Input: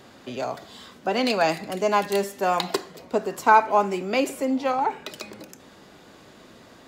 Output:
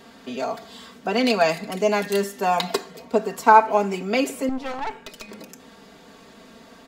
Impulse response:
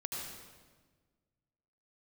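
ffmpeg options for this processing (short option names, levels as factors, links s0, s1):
-filter_complex "[0:a]aecho=1:1:4.4:0.69,asettb=1/sr,asplit=3[s0][s1][s2];[s0]atrim=end=4.494[s3];[s1]atrim=start=4.49:end=5.29,asetpts=PTS-STARTPTS,afade=t=in:d=0.004:c=qsin,afade=t=out:st=0.796:d=0.004:c=qsin,aeval=exprs='(tanh(17.8*val(0)+0.8)-tanh(0.8))/17.8':c=same[s4];[s2]atrim=start=5.286[s5];[s3][s4]acrossfade=d=0.004:c1=hsin:c2=qsin[s6];[s6][s5]acrossfade=d=0.004:c1=qsin:c2=hsin"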